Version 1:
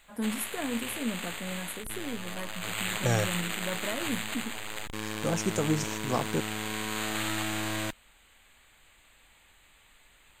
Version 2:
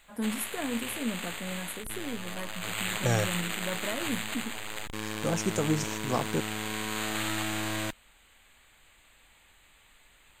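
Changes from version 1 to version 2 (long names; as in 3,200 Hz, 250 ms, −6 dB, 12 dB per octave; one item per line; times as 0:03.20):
nothing changed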